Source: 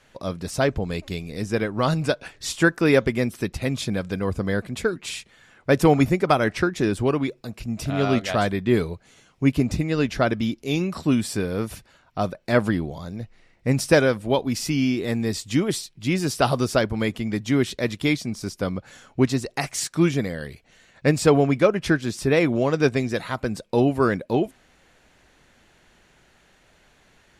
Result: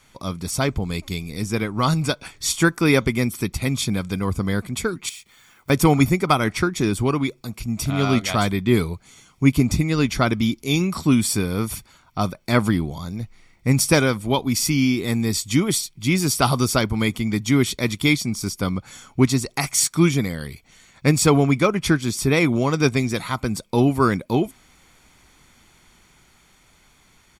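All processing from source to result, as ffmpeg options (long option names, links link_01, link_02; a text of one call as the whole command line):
ffmpeg -i in.wav -filter_complex "[0:a]asettb=1/sr,asplit=3[link_01][link_02][link_03];[link_01]atrim=end=5.094[link_04];[link_02]atrim=start=5.09:end=5.7,asetpts=PTS-STARTPTS,afade=type=in:duration=0.004:curve=qsin,afade=type=out:start_time=0.606:duration=0.004:curve=qsin,lowshelf=frequency=320:gain=-7,acrusher=bits=4:mode=log:mix=0:aa=0.000001,acompressor=threshold=-50dB:ratio=2:attack=3.2:release=140:knee=1:detection=peak[link_05];[link_03]atrim=start=5.696[link_06];[link_04][link_05]acrossfade=duration=0.004:curve1=hsin:curve2=qsin[link_07];[link_07][link_06]acrossfade=duration=0.004:curve1=qsin:curve2=hsin,highshelf=frequency=6800:gain=11.5,aecho=1:1:0.9:0.47,dynaudnorm=framelen=980:gausssize=5:maxgain=4dB" out.wav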